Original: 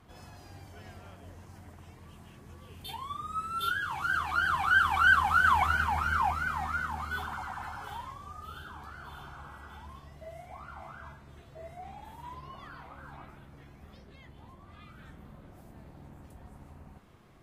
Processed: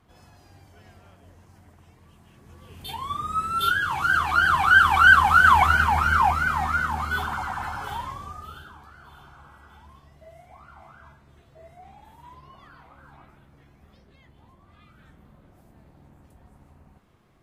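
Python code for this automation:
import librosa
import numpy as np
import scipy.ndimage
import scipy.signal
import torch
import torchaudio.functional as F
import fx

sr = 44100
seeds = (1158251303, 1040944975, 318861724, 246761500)

y = fx.gain(x, sr, db=fx.line((2.23, -3.0), (3.13, 8.5), (8.19, 8.5), (8.85, -3.0)))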